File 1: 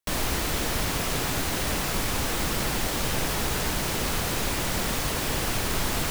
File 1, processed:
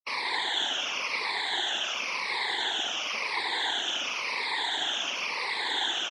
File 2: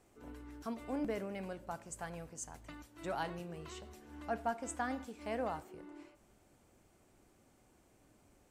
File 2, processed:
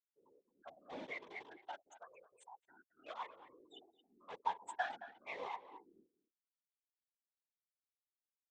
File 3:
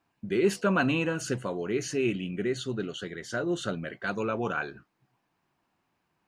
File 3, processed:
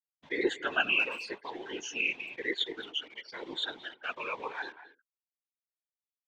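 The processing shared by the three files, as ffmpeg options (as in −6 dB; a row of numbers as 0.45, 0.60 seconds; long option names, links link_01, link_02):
-filter_complex "[0:a]afftfilt=real='re*pow(10,16/40*sin(2*PI*(0.92*log(max(b,1)*sr/1024/100)/log(2)-(-0.95)*(pts-256)/sr)))':imag='im*pow(10,16/40*sin(2*PI*(0.92*log(max(b,1)*sr/1024/100)/log(2)-(-0.95)*(pts-256)/sr)))':win_size=1024:overlap=0.75,afftfilt=real='re*gte(hypot(re,im),0.0158)':imag='im*gte(hypot(re,im),0.0158)':win_size=1024:overlap=0.75,equalizer=frequency=630:width=2.5:gain=-8.5,asplit=2[link_01][link_02];[link_02]aeval=exprs='val(0)*gte(abs(val(0)),0.0188)':channel_layout=same,volume=-6.5dB[link_03];[link_01][link_03]amix=inputs=2:normalize=0,highpass=frequency=460:width=0.5412,highpass=frequency=460:width=1.3066,equalizer=frequency=500:width_type=q:width=4:gain=-8,equalizer=frequency=890:width_type=q:width=4:gain=5,equalizer=frequency=1300:width_type=q:width=4:gain=-9,equalizer=frequency=2100:width_type=q:width=4:gain=4,equalizer=frequency=3400:width_type=q:width=4:gain=8,equalizer=frequency=4900:width_type=q:width=4:gain=-5,lowpass=frequency=5400:width=0.5412,lowpass=frequency=5400:width=1.3066,asplit=2[link_04][link_05];[link_05]adelay=220,highpass=300,lowpass=3400,asoftclip=type=hard:threshold=-16dB,volume=-14dB[link_06];[link_04][link_06]amix=inputs=2:normalize=0,afftfilt=real='hypot(re,im)*cos(2*PI*random(0))':imag='hypot(re,im)*sin(2*PI*random(1))':win_size=512:overlap=0.75"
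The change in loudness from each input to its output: −1.5, −3.5, −3.0 LU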